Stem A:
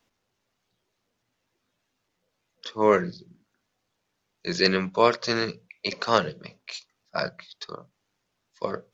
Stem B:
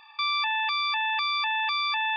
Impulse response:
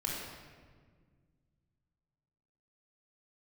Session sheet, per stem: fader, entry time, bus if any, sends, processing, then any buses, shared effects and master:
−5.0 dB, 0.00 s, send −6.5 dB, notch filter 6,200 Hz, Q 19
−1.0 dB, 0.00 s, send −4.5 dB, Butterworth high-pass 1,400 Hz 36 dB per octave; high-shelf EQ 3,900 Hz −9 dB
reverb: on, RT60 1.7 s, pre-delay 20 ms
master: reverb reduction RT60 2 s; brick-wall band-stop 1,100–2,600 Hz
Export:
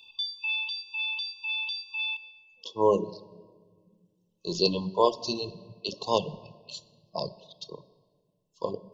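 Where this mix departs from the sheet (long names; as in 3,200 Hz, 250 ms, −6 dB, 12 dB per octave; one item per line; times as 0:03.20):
stem A: missing notch filter 6,200 Hz, Q 19
stem B: missing high-shelf EQ 3,900 Hz −9 dB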